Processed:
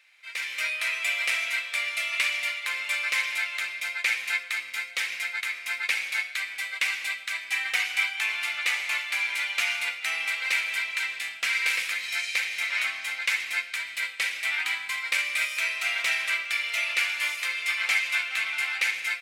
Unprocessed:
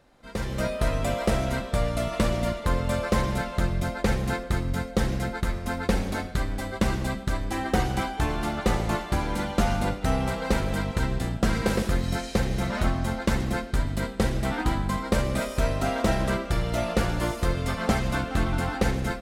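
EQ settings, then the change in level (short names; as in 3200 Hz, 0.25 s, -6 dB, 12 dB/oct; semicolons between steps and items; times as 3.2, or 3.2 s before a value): resonant high-pass 2300 Hz, resonance Q 5.9; +2.0 dB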